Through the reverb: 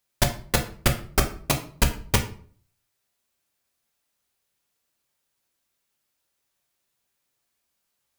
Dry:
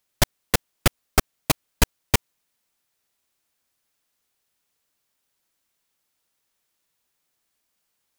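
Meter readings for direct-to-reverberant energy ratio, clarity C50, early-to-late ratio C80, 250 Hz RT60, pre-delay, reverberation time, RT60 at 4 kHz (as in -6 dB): 3.0 dB, 11.0 dB, 15.5 dB, 0.55 s, 4 ms, 0.50 s, 0.35 s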